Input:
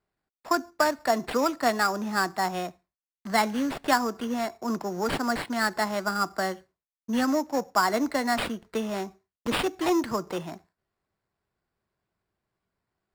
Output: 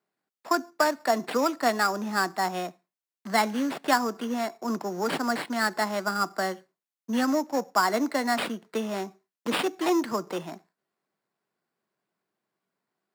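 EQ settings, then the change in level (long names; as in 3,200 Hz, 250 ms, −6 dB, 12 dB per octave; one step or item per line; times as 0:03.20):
high-pass filter 170 Hz 24 dB per octave
0.0 dB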